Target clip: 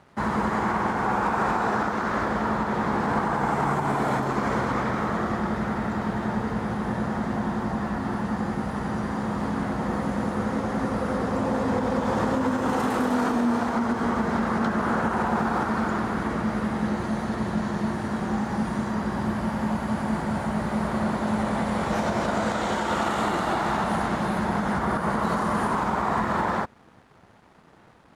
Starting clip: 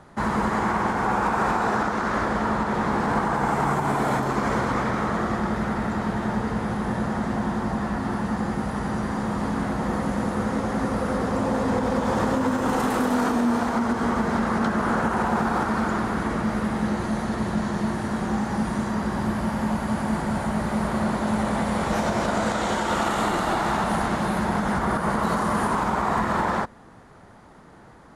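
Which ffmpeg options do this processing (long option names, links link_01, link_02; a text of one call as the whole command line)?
ffmpeg -i in.wav -af "highpass=54,highshelf=frequency=7100:gain=-6.5,aeval=exprs='sgn(val(0))*max(abs(val(0))-0.00211,0)':channel_layout=same,volume=-1dB" out.wav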